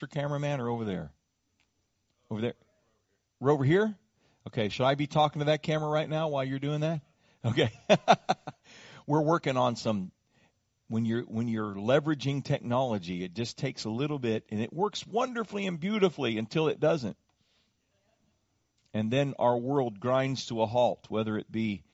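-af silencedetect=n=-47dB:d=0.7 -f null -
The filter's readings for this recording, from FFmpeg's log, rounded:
silence_start: 1.10
silence_end: 2.31 | silence_duration: 1.20
silence_start: 2.52
silence_end: 3.41 | silence_duration: 0.89
silence_start: 10.09
silence_end: 10.90 | silence_duration: 0.81
silence_start: 17.13
silence_end: 18.94 | silence_duration: 1.81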